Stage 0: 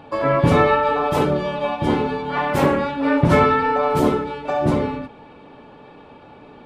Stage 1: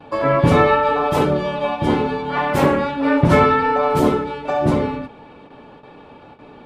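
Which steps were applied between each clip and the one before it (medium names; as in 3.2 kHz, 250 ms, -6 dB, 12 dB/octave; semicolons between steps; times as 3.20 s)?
gate with hold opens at -35 dBFS; trim +1.5 dB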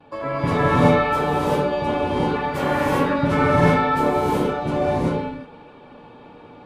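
gated-style reverb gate 410 ms rising, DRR -6.5 dB; trim -9 dB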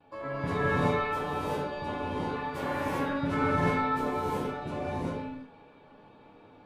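chord resonator C#2 major, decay 0.26 s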